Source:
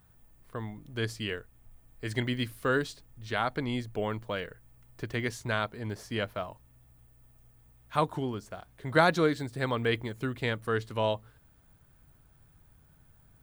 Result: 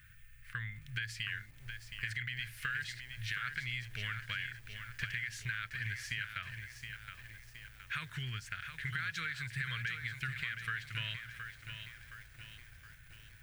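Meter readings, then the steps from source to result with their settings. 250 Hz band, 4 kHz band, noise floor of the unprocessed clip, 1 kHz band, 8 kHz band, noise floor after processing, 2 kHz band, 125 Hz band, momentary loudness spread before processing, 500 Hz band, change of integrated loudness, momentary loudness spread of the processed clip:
-21.5 dB, -3.0 dB, -61 dBFS, -15.5 dB, -3.0 dB, -57 dBFS, -1.5 dB, -7.0 dB, 12 LU, -33.5 dB, -8.0 dB, 14 LU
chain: EQ curve 130 Hz 0 dB, 270 Hz -27 dB, 420 Hz -25 dB, 840 Hz -29 dB, 1600 Hz +13 dB, 2500 Hz +13 dB, 3600 Hz +4 dB, 16000 Hz -3 dB; limiter -19 dBFS, peak gain reduction 14.5 dB; compressor 5:1, threshold -39 dBFS, peak gain reduction 13 dB; lo-fi delay 0.719 s, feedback 55%, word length 10-bit, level -7.5 dB; gain +2.5 dB

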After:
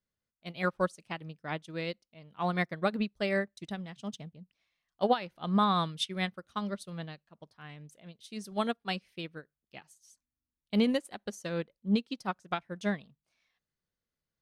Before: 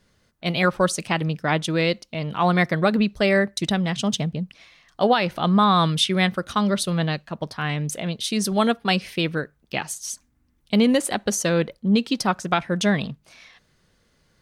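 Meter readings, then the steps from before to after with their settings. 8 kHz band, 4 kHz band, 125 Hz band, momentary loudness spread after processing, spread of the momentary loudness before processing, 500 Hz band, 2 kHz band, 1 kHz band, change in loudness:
-22.0 dB, -13.5 dB, -14.0 dB, 20 LU, 11 LU, -11.0 dB, -12.5 dB, -10.5 dB, -11.0 dB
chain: upward expander 2.5:1, over -29 dBFS; gain -6 dB

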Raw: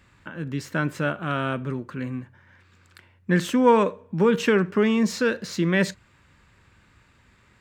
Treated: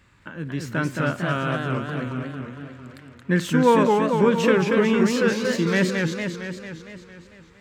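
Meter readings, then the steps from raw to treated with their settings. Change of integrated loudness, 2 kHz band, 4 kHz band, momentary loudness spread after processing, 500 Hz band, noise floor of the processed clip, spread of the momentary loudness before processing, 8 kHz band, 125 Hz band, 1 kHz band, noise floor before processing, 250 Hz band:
+1.5 dB, +2.5 dB, +2.5 dB, 19 LU, +2.5 dB, -51 dBFS, 13 LU, +2.0 dB, +3.0 dB, +2.0 dB, -59 dBFS, +2.0 dB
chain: bell 720 Hz -2 dB 0.34 oct; warbling echo 0.227 s, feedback 62%, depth 199 cents, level -3.5 dB

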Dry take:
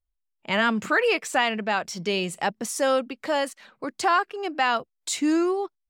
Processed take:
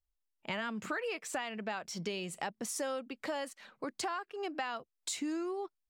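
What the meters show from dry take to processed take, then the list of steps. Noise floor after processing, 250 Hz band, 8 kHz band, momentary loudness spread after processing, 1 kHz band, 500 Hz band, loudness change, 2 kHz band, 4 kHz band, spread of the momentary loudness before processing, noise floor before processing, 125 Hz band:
-84 dBFS, -13.0 dB, -8.0 dB, 4 LU, -14.5 dB, -13.0 dB, -13.5 dB, -14.5 dB, -12.5 dB, 8 LU, -79 dBFS, -10.0 dB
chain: compressor, threshold -30 dBFS, peak gain reduction 13 dB; gain -4.5 dB

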